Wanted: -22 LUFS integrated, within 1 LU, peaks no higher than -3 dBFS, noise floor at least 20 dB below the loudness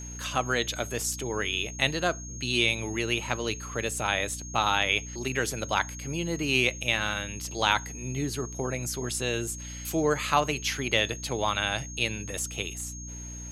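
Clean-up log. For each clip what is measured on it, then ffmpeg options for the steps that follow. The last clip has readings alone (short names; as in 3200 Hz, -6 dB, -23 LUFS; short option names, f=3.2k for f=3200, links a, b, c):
hum 60 Hz; harmonics up to 300 Hz; hum level -38 dBFS; steady tone 6500 Hz; tone level -41 dBFS; loudness -28.0 LUFS; peak -6.0 dBFS; loudness target -22.0 LUFS
-> -af "bandreject=f=60:t=h:w=4,bandreject=f=120:t=h:w=4,bandreject=f=180:t=h:w=4,bandreject=f=240:t=h:w=4,bandreject=f=300:t=h:w=4"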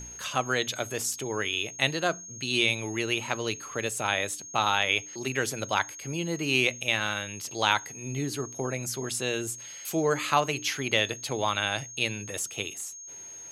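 hum none; steady tone 6500 Hz; tone level -41 dBFS
-> -af "bandreject=f=6.5k:w=30"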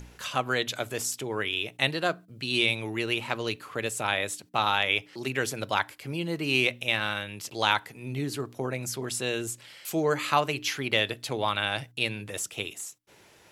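steady tone none; loudness -28.5 LUFS; peak -6.5 dBFS; loudness target -22.0 LUFS
-> -af "volume=6.5dB,alimiter=limit=-3dB:level=0:latency=1"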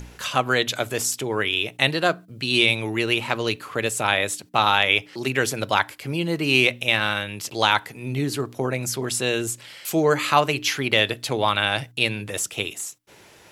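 loudness -22.5 LUFS; peak -3.0 dBFS; noise floor -50 dBFS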